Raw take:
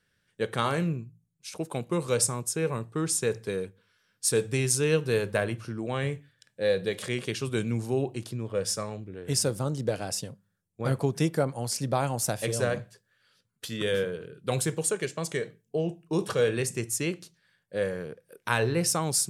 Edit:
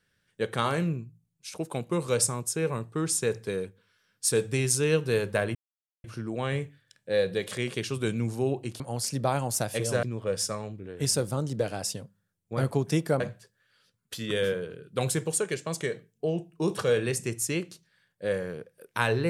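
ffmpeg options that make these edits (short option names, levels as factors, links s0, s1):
-filter_complex "[0:a]asplit=5[s0][s1][s2][s3][s4];[s0]atrim=end=5.55,asetpts=PTS-STARTPTS,afade=t=out:st=5.546:d=0.004:c=hsin,apad=pad_dur=0.49[s5];[s1]atrim=start=5.55:end=8.312,asetpts=PTS-STARTPTS,afade=t=in:d=0.004:c=hsin[s6];[s2]atrim=start=11.478:end=12.712[s7];[s3]atrim=start=8.308:end=11.482[s8];[s4]atrim=start=12.708[s9];[s5][s6]concat=n=2:v=0:a=1[s10];[s10][s7]acrossfade=d=0.004:c1=hsin:c2=hsin[s11];[s11][s8]acrossfade=d=0.004:c1=hsin:c2=hsin[s12];[s12][s9]acrossfade=d=0.004:c1=hsin:c2=hsin"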